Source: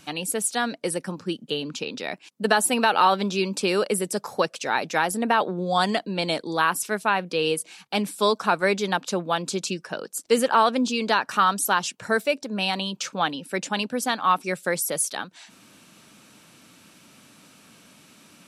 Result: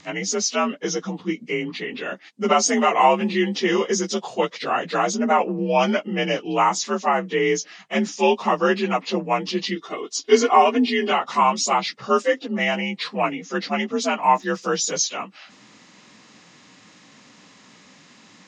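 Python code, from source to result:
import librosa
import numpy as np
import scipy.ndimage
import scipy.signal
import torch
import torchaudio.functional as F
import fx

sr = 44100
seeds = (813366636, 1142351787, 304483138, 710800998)

y = fx.partial_stretch(x, sr, pct=87)
y = fx.comb(y, sr, ms=2.8, depth=0.68, at=(9.76, 11.12))
y = fx.dmg_crackle(y, sr, seeds[0], per_s=31.0, level_db=-45.0, at=(14.21, 14.95), fade=0.02)
y = y * 10.0 ** (4.5 / 20.0)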